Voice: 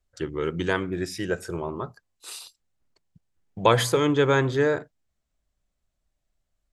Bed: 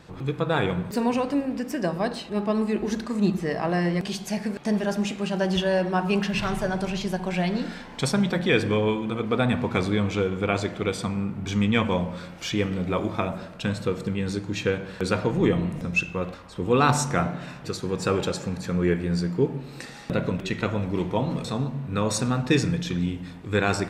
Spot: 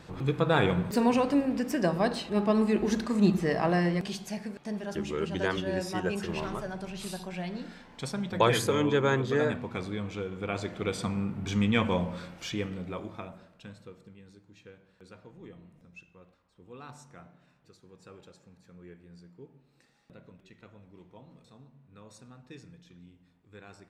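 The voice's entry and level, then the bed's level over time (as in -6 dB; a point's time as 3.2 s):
4.75 s, -5.0 dB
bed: 3.66 s -0.5 dB
4.63 s -11 dB
10.27 s -11 dB
11.03 s -3.5 dB
12.18 s -3.5 dB
14.36 s -27 dB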